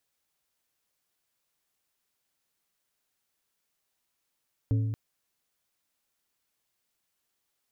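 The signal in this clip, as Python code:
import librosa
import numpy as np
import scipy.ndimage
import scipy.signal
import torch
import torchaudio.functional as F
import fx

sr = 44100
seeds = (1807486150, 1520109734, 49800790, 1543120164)

y = fx.strike_glass(sr, length_s=0.23, level_db=-21.0, body='plate', hz=110.0, decay_s=1.61, tilt_db=9.0, modes=4)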